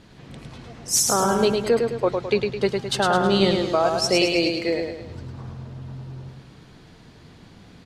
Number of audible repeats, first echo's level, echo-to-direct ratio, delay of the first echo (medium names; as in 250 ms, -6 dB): 5, -4.5 dB, -3.5 dB, 106 ms